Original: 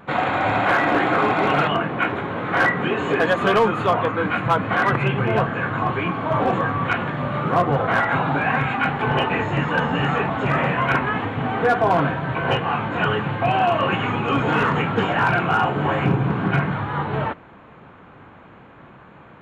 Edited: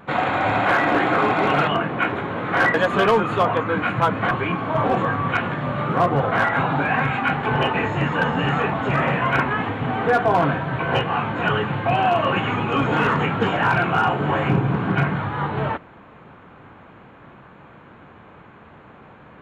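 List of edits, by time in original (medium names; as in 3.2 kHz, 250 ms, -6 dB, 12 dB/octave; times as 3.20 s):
2.74–3.22 s: delete
4.79–5.87 s: delete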